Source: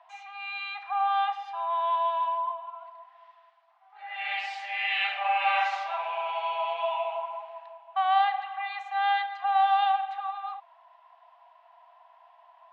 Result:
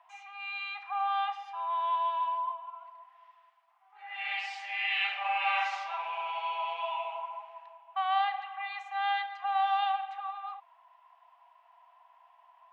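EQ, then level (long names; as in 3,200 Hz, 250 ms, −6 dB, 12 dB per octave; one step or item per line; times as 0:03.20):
dynamic equaliser 4,500 Hz, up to +4 dB, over −48 dBFS, Q 1.6
graphic EQ with 15 bands 630 Hz −10 dB, 1,600 Hz −4 dB, 4,000 Hz −7 dB
0.0 dB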